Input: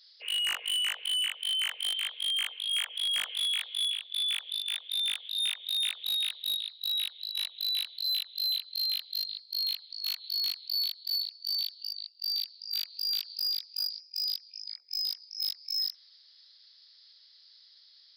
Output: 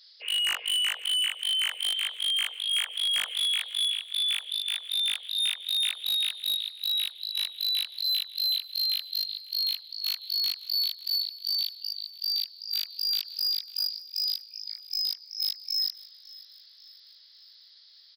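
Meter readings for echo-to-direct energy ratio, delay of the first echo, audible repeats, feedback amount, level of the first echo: -19.0 dB, 548 ms, 3, 48%, -20.0 dB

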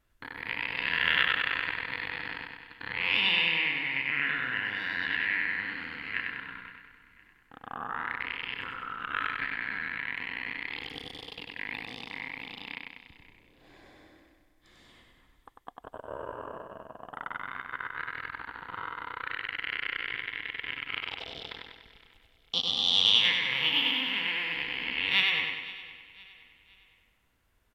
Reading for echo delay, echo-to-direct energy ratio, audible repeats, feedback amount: 97 ms, -2.0 dB, 11, no regular repeats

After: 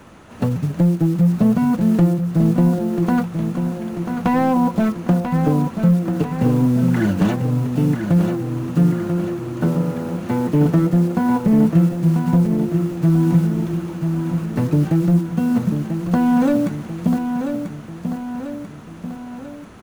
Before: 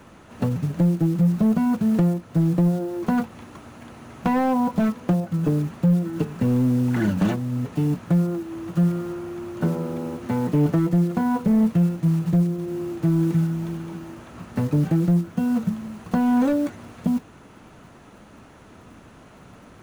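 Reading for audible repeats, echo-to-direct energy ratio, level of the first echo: 4, -5.5 dB, -7.0 dB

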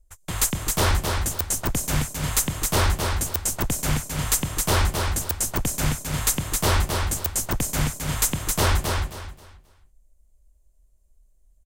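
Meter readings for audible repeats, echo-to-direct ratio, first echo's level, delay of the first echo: 3, -4.0 dB, -4.5 dB, 266 ms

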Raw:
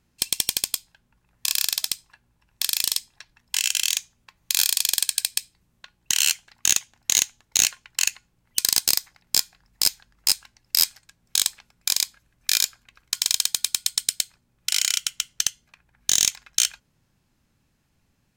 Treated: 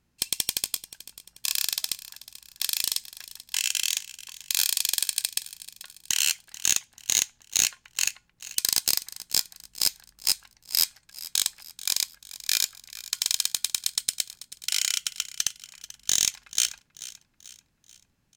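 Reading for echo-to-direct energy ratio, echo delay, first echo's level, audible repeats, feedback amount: -15.5 dB, 437 ms, -16.5 dB, 3, 44%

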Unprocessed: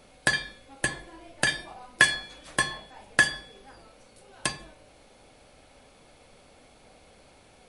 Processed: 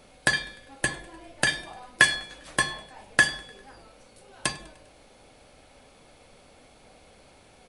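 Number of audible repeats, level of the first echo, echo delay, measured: 3, -23.5 dB, 100 ms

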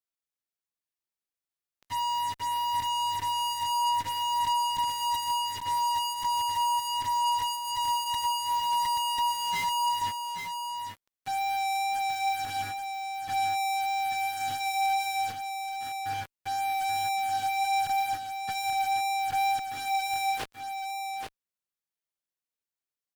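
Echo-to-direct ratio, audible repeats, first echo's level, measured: -6.0 dB, 1, -6.0 dB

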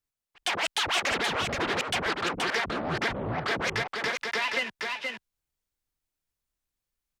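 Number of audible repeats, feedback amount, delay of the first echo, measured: 1, no regular repeats, 475 ms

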